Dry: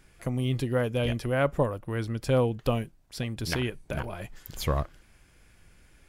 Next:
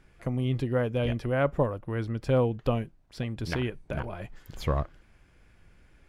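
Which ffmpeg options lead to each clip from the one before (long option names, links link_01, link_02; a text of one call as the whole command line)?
ffmpeg -i in.wav -af "lowpass=frequency=2300:poles=1" out.wav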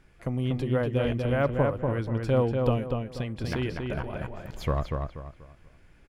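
ffmpeg -i in.wav -filter_complex "[0:a]deesser=1,asplit=2[link_01][link_02];[link_02]adelay=241,lowpass=frequency=3600:poles=1,volume=-4dB,asplit=2[link_03][link_04];[link_04]adelay=241,lowpass=frequency=3600:poles=1,volume=0.32,asplit=2[link_05][link_06];[link_06]adelay=241,lowpass=frequency=3600:poles=1,volume=0.32,asplit=2[link_07][link_08];[link_08]adelay=241,lowpass=frequency=3600:poles=1,volume=0.32[link_09];[link_01][link_03][link_05][link_07][link_09]amix=inputs=5:normalize=0" out.wav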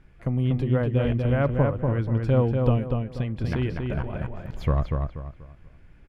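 ffmpeg -i in.wav -af "bass=frequency=250:gain=6,treble=frequency=4000:gain=-8" out.wav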